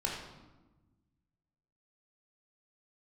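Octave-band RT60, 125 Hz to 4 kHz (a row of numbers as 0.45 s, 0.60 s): 2.0 s, 1.8 s, 1.2 s, 1.1 s, 0.85 s, 0.75 s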